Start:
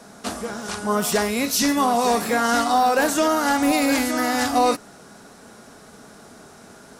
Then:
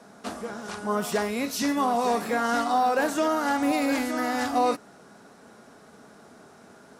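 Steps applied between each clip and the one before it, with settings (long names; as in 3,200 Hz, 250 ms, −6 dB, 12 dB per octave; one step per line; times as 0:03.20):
high-pass filter 130 Hz 6 dB per octave
high-shelf EQ 3,300 Hz −8 dB
level −4 dB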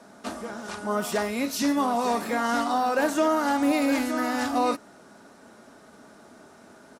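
comb filter 3.3 ms, depth 30%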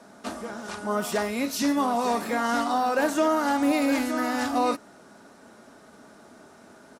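no processing that can be heard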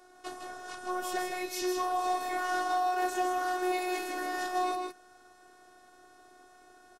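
phases set to zero 363 Hz
single-tap delay 158 ms −5 dB
level −4.5 dB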